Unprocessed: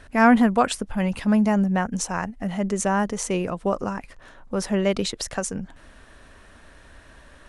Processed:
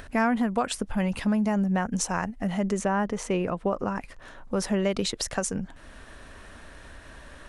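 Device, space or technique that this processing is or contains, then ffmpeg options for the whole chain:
upward and downward compression: -filter_complex "[0:a]asettb=1/sr,asplit=3[link_01][link_02][link_03];[link_01]atrim=end=2.794[link_04];[link_02]atrim=start=2.79:end=3.96,asetpts=PTS-STARTPTS,afade=type=in:duration=0.004:curve=qsin,afade=type=out:start_time=1.166:duration=0.004:curve=qsin,bass=frequency=250:gain=-1,treble=frequency=4000:gain=-10[link_05];[link_03]atrim=start=3.956[link_06];[link_04][link_05]acrossfade=duration=0.004:curve1=hsin:curve2=qsin[link_07];[link_07][link_06]acrossfade=duration=0.004:curve1=qsin:curve2=hsin,acompressor=mode=upward:threshold=-39dB:ratio=2.5,acompressor=threshold=-21dB:ratio=6"

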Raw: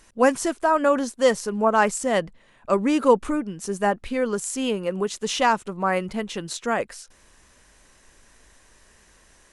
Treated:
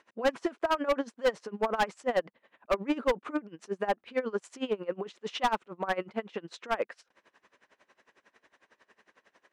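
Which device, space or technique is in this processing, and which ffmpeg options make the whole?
helicopter radio: -af "highpass=310,lowpass=2700,aeval=exprs='val(0)*pow(10,-22*(0.5-0.5*cos(2*PI*11*n/s))/20)':channel_layout=same,asoftclip=type=hard:threshold=-21.5dB,volume=1dB"

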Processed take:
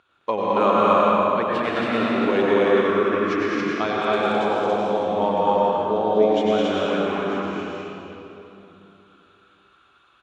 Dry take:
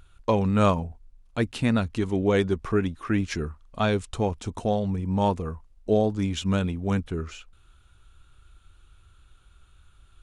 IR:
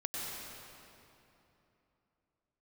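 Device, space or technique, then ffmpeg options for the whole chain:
station announcement: -filter_complex "[0:a]highpass=360,lowpass=3500,equalizer=frequency=1100:width_type=o:width=0.24:gain=5,aecho=1:1:212.8|274.1:0.708|0.891[link_01];[1:a]atrim=start_sample=2205[link_02];[link_01][link_02]afir=irnorm=-1:irlink=0,volume=2dB"

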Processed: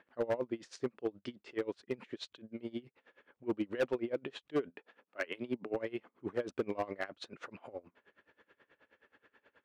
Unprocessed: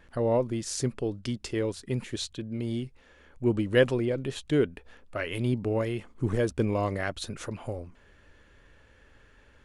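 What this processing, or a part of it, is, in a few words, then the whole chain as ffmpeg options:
helicopter radio: -filter_complex "[0:a]asettb=1/sr,asplit=3[link_01][link_02][link_03];[link_01]atrim=end=4.704[link_04];[link_02]atrim=start=4.7:end=5.74,asetpts=PTS-STARTPTS,afade=type=in:duration=0.004:curve=qsin,afade=type=out:start_time=1.036:duration=0.004:curve=qsin,highpass=frequency=130:width=0.5412,highpass=frequency=130:width=1.3066[link_05];[link_03]atrim=start=5.736[link_06];[link_04][link_05]acrossfade=duration=0.004:curve1=hsin:curve2=qsin[link_07];[link_07][link_06]acrossfade=duration=0.004:curve1=qsin:curve2=hsin,highpass=300,lowpass=2900,aeval=exprs='val(0)*pow(10,-23*(0.5-0.5*cos(2*PI*9.4*n/s))/20)':channel_layout=same,asoftclip=type=hard:threshold=-25.5dB"

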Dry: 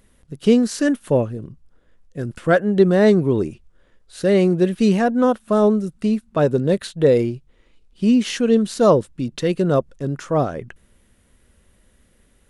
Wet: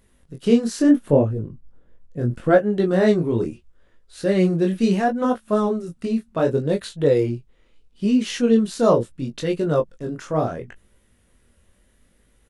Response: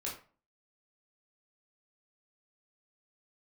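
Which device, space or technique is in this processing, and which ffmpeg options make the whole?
double-tracked vocal: -filter_complex "[0:a]asettb=1/sr,asplit=3[link_01][link_02][link_03];[link_01]atrim=end=0.804[link_04];[link_02]atrim=start=0.8:end=2.59,asetpts=PTS-STARTPTS,afade=type=in:duration=0.004:curve=qsin,afade=type=out:start_time=1.786:duration=0.004:curve=qsin,tiltshelf=frequency=1200:gain=5.5[link_05];[link_03]atrim=start=2.586[link_06];[link_04][link_05]acrossfade=duration=0.004:curve1=hsin:curve2=qsin[link_07];[link_07][link_06]acrossfade=duration=0.004:curve1=qsin:curve2=hsin,asplit=2[link_08][link_09];[link_09]adelay=17,volume=-11dB[link_10];[link_08][link_10]amix=inputs=2:normalize=0,flanger=delay=19:depth=7.4:speed=0.73"

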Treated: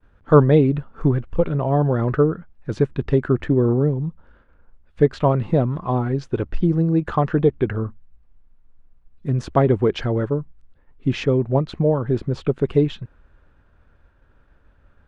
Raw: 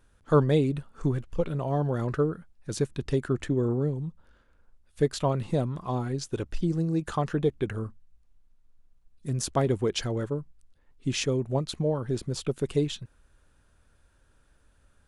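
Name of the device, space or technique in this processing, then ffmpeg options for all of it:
hearing-loss simulation: -af "lowpass=2100,agate=range=-33dB:threshold=-60dB:ratio=3:detection=peak,volume=8.5dB"

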